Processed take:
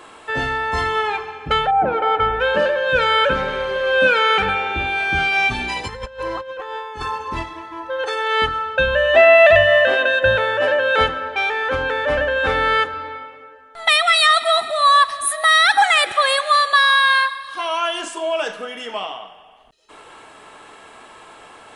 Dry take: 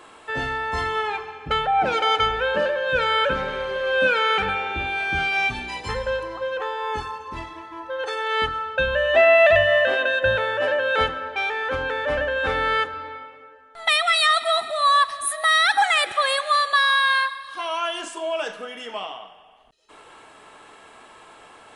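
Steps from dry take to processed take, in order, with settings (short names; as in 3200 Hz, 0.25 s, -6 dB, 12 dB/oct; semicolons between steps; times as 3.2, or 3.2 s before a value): 1.7–2.39 LPF 1000 Hz -> 1900 Hz 12 dB/oct; 5.51–7.43 negative-ratio compressor -31 dBFS, ratio -0.5; gain +4.5 dB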